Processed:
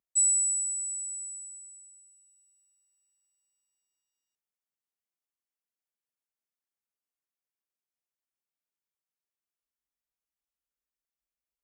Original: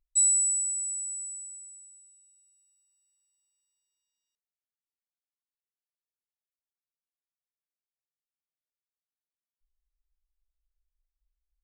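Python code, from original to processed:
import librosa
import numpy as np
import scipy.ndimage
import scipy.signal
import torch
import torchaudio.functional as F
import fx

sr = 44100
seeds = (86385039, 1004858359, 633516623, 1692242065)

y = scipy.signal.sosfilt(scipy.signal.cheby1(2, 1.0, 190.0, 'highpass', fs=sr, output='sos'), x)
y = fx.peak_eq(y, sr, hz=4000.0, db=-8.0, octaves=0.42)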